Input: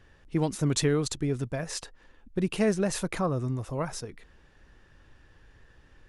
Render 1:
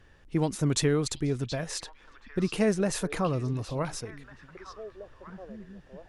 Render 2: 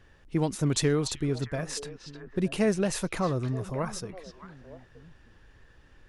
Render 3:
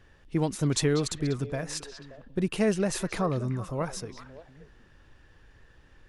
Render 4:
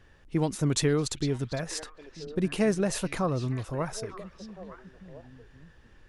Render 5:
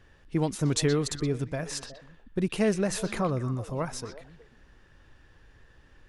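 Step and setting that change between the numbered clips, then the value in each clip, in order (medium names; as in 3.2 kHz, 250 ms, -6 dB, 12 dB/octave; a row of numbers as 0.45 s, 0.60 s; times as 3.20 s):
repeats whose band climbs or falls, time: 725 ms, 308 ms, 192 ms, 454 ms, 122 ms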